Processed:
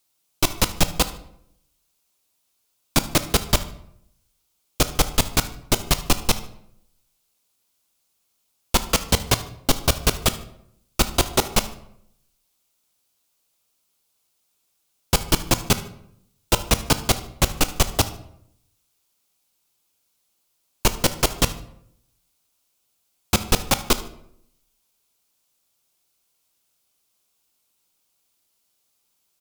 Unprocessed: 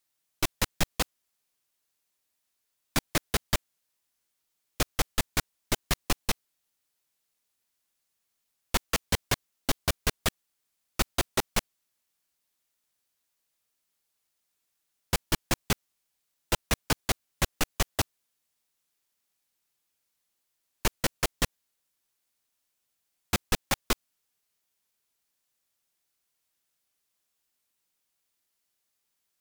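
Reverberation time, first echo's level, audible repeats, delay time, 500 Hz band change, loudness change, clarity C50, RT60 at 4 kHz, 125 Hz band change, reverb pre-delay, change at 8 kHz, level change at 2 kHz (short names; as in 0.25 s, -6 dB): 0.70 s, -19.5 dB, 1, 75 ms, +8.5 dB, +8.0 dB, 13.5 dB, 0.50 s, +9.0 dB, 15 ms, +8.5 dB, +4.5 dB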